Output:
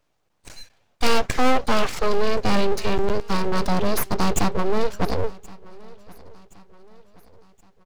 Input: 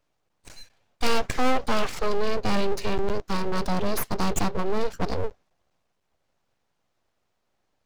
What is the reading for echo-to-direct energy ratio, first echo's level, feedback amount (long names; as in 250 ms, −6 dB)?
−22.0 dB, −23.0 dB, 48%